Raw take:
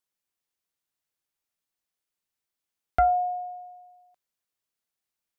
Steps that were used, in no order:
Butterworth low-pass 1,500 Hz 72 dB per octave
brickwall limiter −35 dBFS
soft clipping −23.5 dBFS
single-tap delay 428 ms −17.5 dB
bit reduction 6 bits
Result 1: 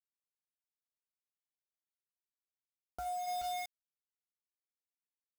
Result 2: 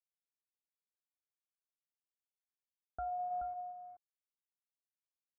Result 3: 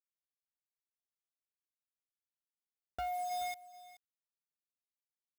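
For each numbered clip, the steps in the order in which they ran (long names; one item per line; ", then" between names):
single-tap delay, then soft clipping, then Butterworth low-pass, then bit reduction, then brickwall limiter
bit reduction, then single-tap delay, then brickwall limiter, then soft clipping, then Butterworth low-pass
Butterworth low-pass, then bit reduction, then soft clipping, then brickwall limiter, then single-tap delay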